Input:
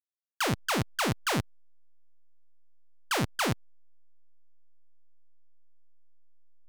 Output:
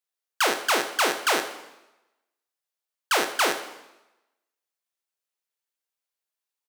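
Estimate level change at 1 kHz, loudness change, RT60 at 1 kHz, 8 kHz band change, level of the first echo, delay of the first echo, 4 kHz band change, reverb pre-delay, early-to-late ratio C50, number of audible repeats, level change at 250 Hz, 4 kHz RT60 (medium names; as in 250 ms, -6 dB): +7.0 dB, +6.0 dB, 1.0 s, +7.5 dB, -13.5 dB, 75 ms, +7.0 dB, 9 ms, 9.0 dB, 1, -2.5 dB, 0.90 s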